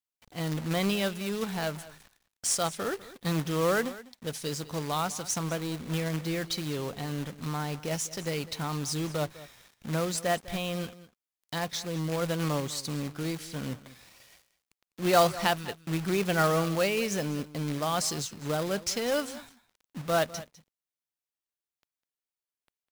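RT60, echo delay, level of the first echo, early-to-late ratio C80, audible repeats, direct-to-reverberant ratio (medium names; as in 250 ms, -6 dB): no reverb, 202 ms, -17.5 dB, no reverb, 1, no reverb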